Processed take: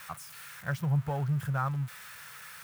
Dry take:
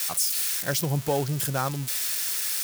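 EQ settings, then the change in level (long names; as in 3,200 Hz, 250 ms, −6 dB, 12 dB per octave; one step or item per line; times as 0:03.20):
drawn EQ curve 150 Hz 0 dB, 310 Hz −18 dB, 1,300 Hz −1 dB, 4,900 Hz −23 dB
0.0 dB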